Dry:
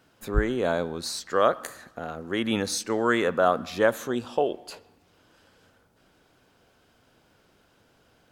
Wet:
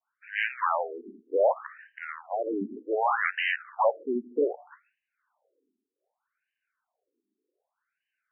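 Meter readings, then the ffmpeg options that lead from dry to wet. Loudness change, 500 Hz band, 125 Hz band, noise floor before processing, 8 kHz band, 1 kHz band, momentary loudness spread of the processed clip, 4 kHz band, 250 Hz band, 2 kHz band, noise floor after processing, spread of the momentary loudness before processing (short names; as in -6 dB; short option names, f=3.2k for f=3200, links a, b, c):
-2.5 dB, -3.0 dB, under -20 dB, -64 dBFS, under -40 dB, 0.0 dB, 15 LU, -8.0 dB, -7.5 dB, +0.5 dB, under -85 dBFS, 14 LU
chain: -af "aeval=exprs='0.422*(cos(1*acos(clip(val(0)/0.422,-1,1)))-cos(1*PI/2))+0.168*(cos(8*acos(clip(val(0)/0.422,-1,1)))-cos(8*PI/2))':c=same,agate=range=-33dB:threshold=-52dB:ratio=3:detection=peak,afftfilt=real='re*between(b*sr/1024,290*pow(2200/290,0.5+0.5*sin(2*PI*0.65*pts/sr))/1.41,290*pow(2200/290,0.5+0.5*sin(2*PI*0.65*pts/sr))*1.41)':imag='im*between(b*sr/1024,290*pow(2200/290,0.5+0.5*sin(2*PI*0.65*pts/sr))/1.41,290*pow(2200/290,0.5+0.5*sin(2*PI*0.65*pts/sr))*1.41)':win_size=1024:overlap=0.75"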